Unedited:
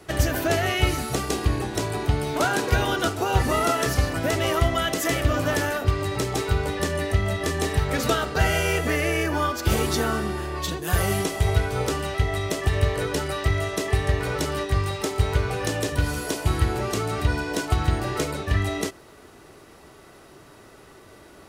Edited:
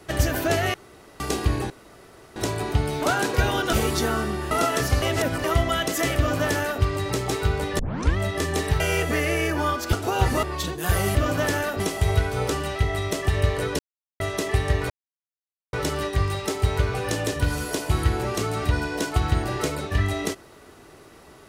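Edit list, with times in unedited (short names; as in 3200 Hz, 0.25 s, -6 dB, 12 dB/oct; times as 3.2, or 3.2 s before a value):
0.74–1.2 room tone
1.7 insert room tone 0.66 s
3.07–3.57 swap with 9.69–10.47
4.08–4.5 reverse
5.23–5.88 copy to 11.19
6.85 tape start 0.38 s
7.86–8.56 cut
13.18–13.59 mute
14.29 insert silence 0.83 s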